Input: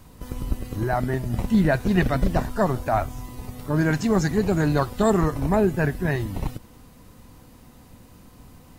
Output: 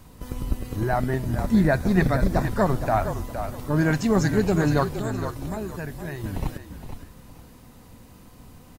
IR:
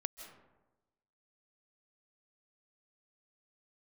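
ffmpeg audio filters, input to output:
-filter_complex "[0:a]asettb=1/sr,asplit=3[link_01][link_02][link_03];[link_01]atrim=end=1.354[link_04];[link_02]atrim=start=1.35:end=2.44,asetpts=PTS-STARTPTS,afade=type=in:duration=0.004:curve=qsin,afade=type=out:start_time=1.086:duration=0.004:curve=qsin,equalizer=frequency=2900:width=7.4:gain=-15[link_05];[link_03]atrim=start=2.436[link_06];[link_04][link_05]acrossfade=duration=0.004:curve1=hsin:curve2=qsin[link_07];[link_07][link_06]acrossfade=duration=0.004:curve1=qsin:curve2=hsin,asettb=1/sr,asplit=3[link_08][link_09][link_10];[link_08]atrim=end=4.844[link_11];[link_09]atrim=start=4.84:end=6.24,asetpts=PTS-STARTPTS,afade=type=in:duration=0.004:curve=qsin,afade=type=out:start_time=1.396:duration=0.004:curve=qsin,acrossover=split=3200|7700[link_12][link_13][link_14];[link_12]acompressor=threshold=-32dB:ratio=4[link_15];[link_13]acompressor=threshold=-52dB:ratio=4[link_16];[link_14]acompressor=threshold=-51dB:ratio=4[link_17];[link_15][link_16][link_17]amix=inputs=3:normalize=0[link_18];[link_10]atrim=start=6.236[link_19];[link_11][link_18]acrossfade=duration=0.004:curve1=hsin:curve2=qsin[link_20];[link_20][link_19]acrossfade=duration=0.004:curve1=qsin:curve2=hsin,asplit=4[link_21][link_22][link_23][link_24];[link_22]adelay=465,afreqshift=-38,volume=-9dB[link_25];[link_23]adelay=930,afreqshift=-76,volume=-19.5dB[link_26];[link_24]adelay=1395,afreqshift=-114,volume=-29.9dB[link_27];[link_21][link_25][link_26][link_27]amix=inputs=4:normalize=0"

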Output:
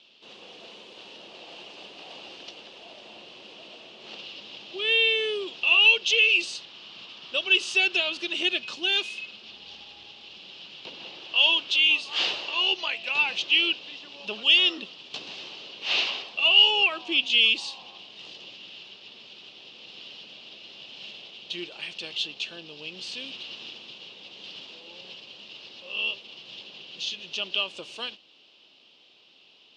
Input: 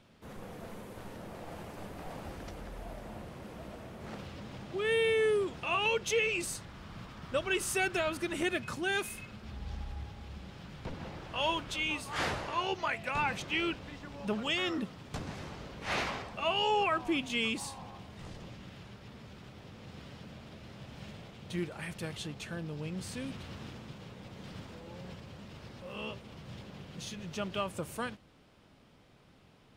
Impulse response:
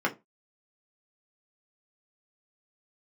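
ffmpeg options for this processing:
-af "highpass=350,equalizer=frequency=360:width_type=q:width=4:gain=4,equalizer=frequency=1400:width_type=q:width=4:gain=-4,equalizer=frequency=2800:width_type=q:width=4:gain=9,lowpass=frequency=4200:width=0.5412,lowpass=frequency=4200:width=1.3066,aexciter=amount=11.2:drive=1:freq=2900,volume=-2dB"

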